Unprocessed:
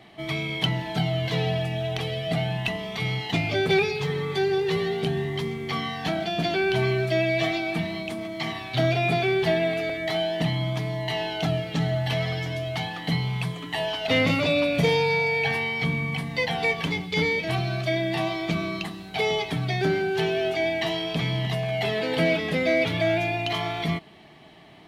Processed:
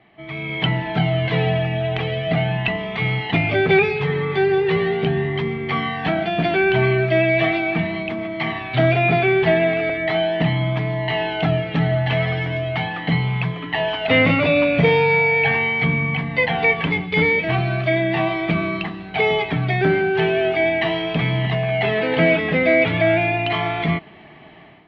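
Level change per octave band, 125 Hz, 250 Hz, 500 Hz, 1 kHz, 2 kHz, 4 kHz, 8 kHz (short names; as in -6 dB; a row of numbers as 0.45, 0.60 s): +6.0 dB, +6.0 dB, +6.0 dB, +6.5 dB, +7.5 dB, +1.0 dB, under -15 dB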